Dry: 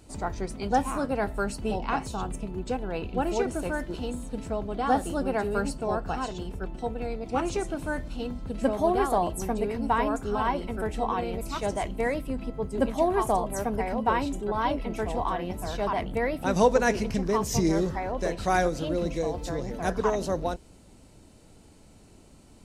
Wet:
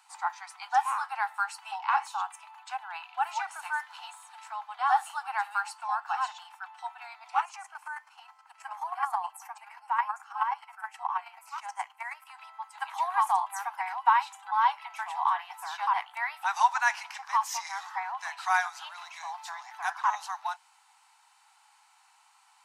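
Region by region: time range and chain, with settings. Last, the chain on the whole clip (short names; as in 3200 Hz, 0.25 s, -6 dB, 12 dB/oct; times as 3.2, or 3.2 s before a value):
7.43–12.27 bell 3700 Hz -12.5 dB 0.3 oct + chopper 9.4 Hz, depth 60%, duty 20%
whole clip: steep high-pass 800 Hz 96 dB/oct; high shelf 2300 Hz -12 dB; gain +7 dB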